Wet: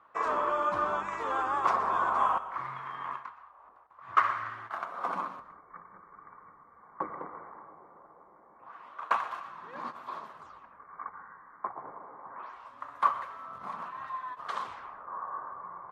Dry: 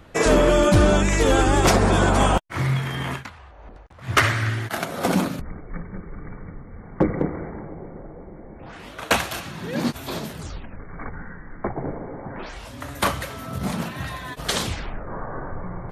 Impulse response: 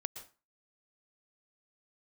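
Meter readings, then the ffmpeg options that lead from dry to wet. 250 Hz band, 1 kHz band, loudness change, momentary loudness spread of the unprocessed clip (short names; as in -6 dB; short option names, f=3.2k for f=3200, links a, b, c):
-25.0 dB, -3.0 dB, -10.5 dB, 22 LU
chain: -filter_complex "[0:a]bandpass=f=1.1k:t=q:w=6.8:csg=0,asplit=2[a][b];[1:a]atrim=start_sample=2205[c];[b][c]afir=irnorm=-1:irlink=0,volume=3.5dB[d];[a][d]amix=inputs=2:normalize=0,volume=-4dB"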